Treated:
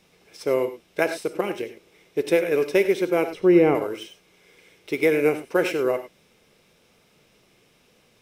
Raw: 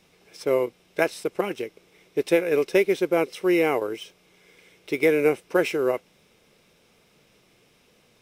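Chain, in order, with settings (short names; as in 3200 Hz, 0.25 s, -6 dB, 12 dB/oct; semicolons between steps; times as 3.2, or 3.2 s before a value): 3.3–3.75 tilt -3.5 dB/oct; non-linear reverb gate 0.12 s rising, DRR 9.5 dB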